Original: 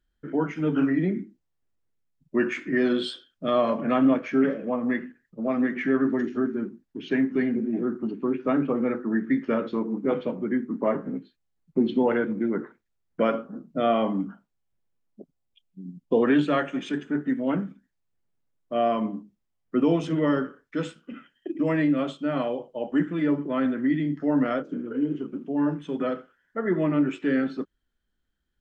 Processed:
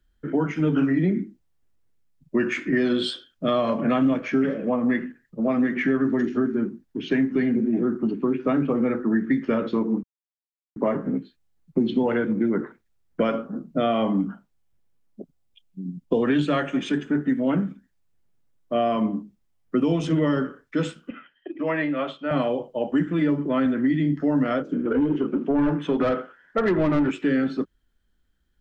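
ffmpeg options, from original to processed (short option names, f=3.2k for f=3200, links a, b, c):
-filter_complex "[0:a]asettb=1/sr,asplit=3[a][b][c];[a]atrim=end=21.104[d];[b]atrim=start=21.1:end=22.31,asetpts=PTS-STARTPTS,afade=t=in:d=0.004:c=qsin,afade=t=out:st=1.206:d=0.004:c=qsin,acrossover=split=490 4000:gain=0.224 1 0.0891[e][f][g];[e][f][g]amix=inputs=3:normalize=0[h];[c]atrim=start=22.306[i];[d][h]acrossfade=d=0.004:c1=hsin:c2=qsin[j];[j][i]acrossfade=d=0.004:c1=qsin:c2=hsin,asettb=1/sr,asplit=3[k][l][m];[k]atrim=end=24.854[n];[l]atrim=start=24.85:end=27.11,asetpts=PTS-STARTPTS,afade=t=in:d=0.004:c=qsin,afade=t=out:st=2.256:d=0.004:c=qsin,asplit=2[o][p];[p]highpass=f=720:p=1,volume=19dB,asoftclip=type=tanh:threshold=-13dB[q];[o][q]amix=inputs=2:normalize=0,lowpass=f=1.2k:p=1,volume=-6dB[r];[m]atrim=start=27.106[s];[n][r]acrossfade=d=0.004:c1=hsin:c2=qsin[t];[t][s]acrossfade=d=0.004:c1=qsin:c2=hsin,asplit=3[u][v][w];[u]atrim=end=10.03,asetpts=PTS-STARTPTS,afade=t=out:st=10.026:d=0.004:c=hsin[x];[v]atrim=start=10.03:end=10.76,asetpts=PTS-STARTPTS,volume=0[y];[w]atrim=start=10.76,asetpts=PTS-STARTPTS,afade=t=in:d=0.004:c=hsin[z];[x][y][z]concat=n=3:v=0:a=1,lowshelf=f=140:g=5,acrossover=split=140|3000[aa][ab][ac];[ab]acompressor=threshold=-24dB:ratio=6[ad];[aa][ad][ac]amix=inputs=3:normalize=0,volume=5dB"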